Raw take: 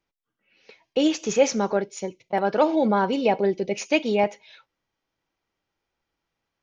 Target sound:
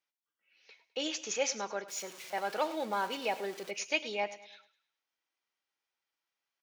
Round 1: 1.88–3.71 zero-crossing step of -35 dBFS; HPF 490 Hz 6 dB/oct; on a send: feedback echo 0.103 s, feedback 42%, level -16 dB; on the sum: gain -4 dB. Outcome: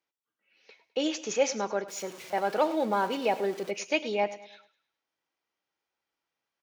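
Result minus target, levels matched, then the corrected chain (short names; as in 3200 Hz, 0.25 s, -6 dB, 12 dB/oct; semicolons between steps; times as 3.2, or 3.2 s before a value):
2000 Hz band -3.5 dB
1.88–3.71 zero-crossing step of -35 dBFS; HPF 1700 Hz 6 dB/oct; on a send: feedback echo 0.103 s, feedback 42%, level -16 dB; on the sum: gain -4 dB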